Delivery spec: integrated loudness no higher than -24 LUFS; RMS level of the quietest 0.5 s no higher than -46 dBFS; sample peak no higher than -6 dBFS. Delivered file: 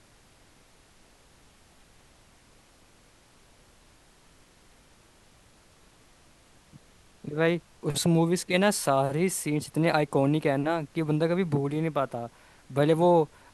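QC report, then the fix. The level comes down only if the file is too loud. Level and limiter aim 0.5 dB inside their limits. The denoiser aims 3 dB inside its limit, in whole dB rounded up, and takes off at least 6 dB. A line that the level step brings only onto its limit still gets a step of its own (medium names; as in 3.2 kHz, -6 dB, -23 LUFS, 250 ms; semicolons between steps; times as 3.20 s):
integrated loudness -26.0 LUFS: pass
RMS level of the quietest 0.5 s -58 dBFS: pass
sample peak -9.5 dBFS: pass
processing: none needed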